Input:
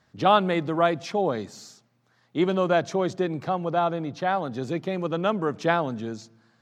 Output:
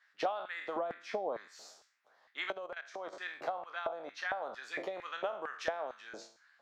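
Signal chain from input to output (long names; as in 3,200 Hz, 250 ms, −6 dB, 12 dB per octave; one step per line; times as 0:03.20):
peak hold with a decay on every bin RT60 0.44 s
high-shelf EQ 4,000 Hz −8 dB
auto-filter high-pass square 2.2 Hz 620–1,700 Hz
0:00.76–0:01.48: parametric band 200 Hz +14.5 dB 2.5 octaves
downward compressor 6 to 1, threshold −29 dBFS, peak gain reduction 21 dB
harmonic and percussive parts rebalanced harmonic −6 dB
0:02.52–0:03.13: output level in coarse steps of 13 dB
level −2.5 dB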